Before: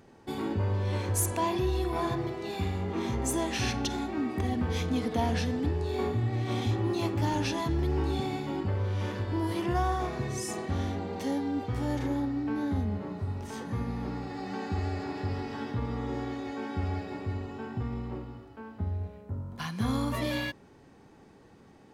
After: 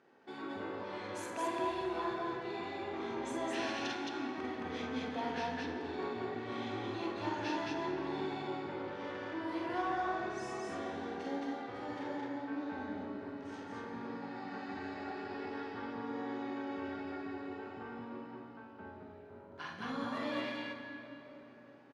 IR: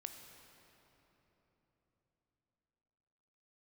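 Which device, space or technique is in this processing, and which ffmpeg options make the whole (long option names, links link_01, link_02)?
station announcement: -filter_complex "[0:a]highpass=320,lowpass=4100,equalizer=frequency=1500:width_type=o:width=0.44:gain=5.5,aecho=1:1:46.65|218.7:0.631|0.891[link_01];[1:a]atrim=start_sample=2205[link_02];[link_01][link_02]afir=irnorm=-1:irlink=0,volume=-4dB"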